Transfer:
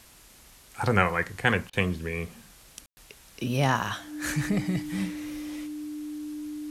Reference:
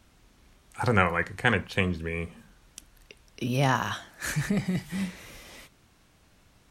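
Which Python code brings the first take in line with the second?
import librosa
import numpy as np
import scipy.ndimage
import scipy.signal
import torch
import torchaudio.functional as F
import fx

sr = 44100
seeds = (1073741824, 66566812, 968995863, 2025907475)

y = fx.notch(x, sr, hz=300.0, q=30.0)
y = fx.fix_ambience(y, sr, seeds[0], print_start_s=0.0, print_end_s=0.5, start_s=2.86, end_s=2.97)
y = fx.fix_interpolate(y, sr, at_s=(1.7,), length_ms=30.0)
y = fx.noise_reduce(y, sr, print_start_s=0.0, print_end_s=0.5, reduce_db=7.0)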